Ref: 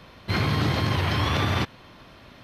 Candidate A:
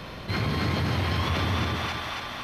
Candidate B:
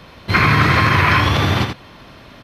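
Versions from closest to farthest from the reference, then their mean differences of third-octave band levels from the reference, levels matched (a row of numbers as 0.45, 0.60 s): B, A; 3.0, 7.5 dB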